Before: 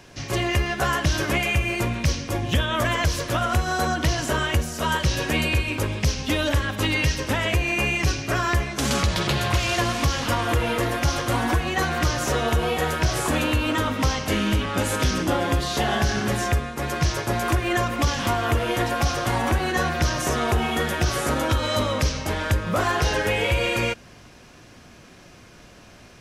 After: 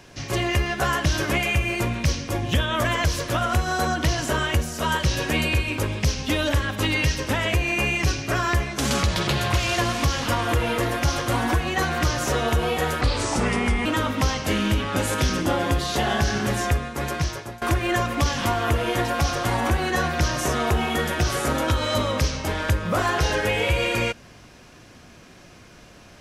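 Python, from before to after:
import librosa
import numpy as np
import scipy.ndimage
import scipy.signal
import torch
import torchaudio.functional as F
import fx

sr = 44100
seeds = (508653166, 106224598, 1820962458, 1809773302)

y = fx.edit(x, sr, fx.speed_span(start_s=13.01, length_s=0.66, speed=0.78),
    fx.fade_out_to(start_s=16.88, length_s=0.55, floor_db=-22.5), tone=tone)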